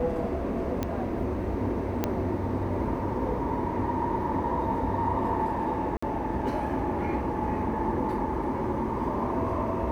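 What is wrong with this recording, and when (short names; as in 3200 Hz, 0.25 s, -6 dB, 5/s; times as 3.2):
0.83 pop -15 dBFS
2.04 pop -12 dBFS
5.97–6.03 gap 55 ms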